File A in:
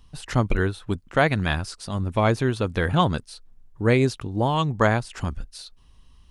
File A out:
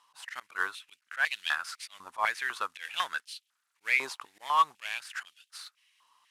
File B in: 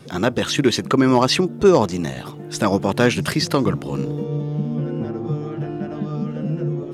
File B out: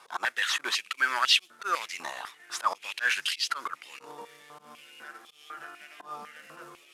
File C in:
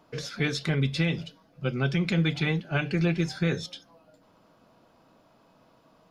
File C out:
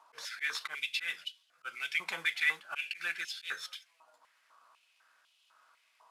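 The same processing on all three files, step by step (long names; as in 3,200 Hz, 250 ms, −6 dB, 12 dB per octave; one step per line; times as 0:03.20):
variable-slope delta modulation 64 kbit/s
volume swells 101 ms
high-pass on a step sequencer 4 Hz 980–3,000 Hz
level −5.5 dB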